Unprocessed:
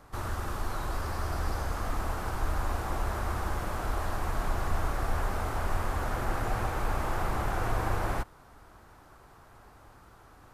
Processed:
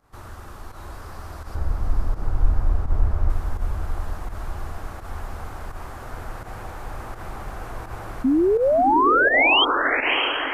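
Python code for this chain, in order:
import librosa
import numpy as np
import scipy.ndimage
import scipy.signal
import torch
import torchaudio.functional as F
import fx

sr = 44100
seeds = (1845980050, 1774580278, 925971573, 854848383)

p1 = fx.tilt_eq(x, sr, slope=-3.5, at=(1.55, 3.3))
p2 = fx.spec_paint(p1, sr, seeds[0], shape='rise', start_s=8.24, length_s=1.41, low_hz=250.0, high_hz=3300.0, level_db=-12.0)
p3 = p2 + fx.echo_diffused(p2, sr, ms=639, feedback_pct=52, wet_db=-4.5, dry=0)
p4 = fx.volume_shaper(p3, sr, bpm=84, per_beat=1, depth_db=-11, release_ms=91.0, shape='fast start')
y = p4 * librosa.db_to_amplitude(-5.5)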